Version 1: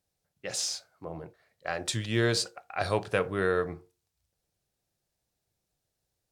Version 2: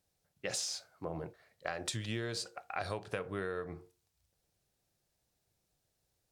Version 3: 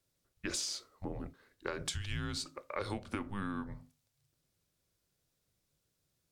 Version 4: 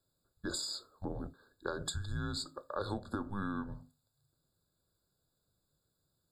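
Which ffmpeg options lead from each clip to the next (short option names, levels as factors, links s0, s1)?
-af "acompressor=threshold=0.0178:ratio=16,volume=1.19"
-af "afreqshift=-200"
-af "afftfilt=real='re*eq(mod(floor(b*sr/1024/1700),2),0)':imag='im*eq(mod(floor(b*sr/1024/1700),2),0)':win_size=1024:overlap=0.75,volume=1.12"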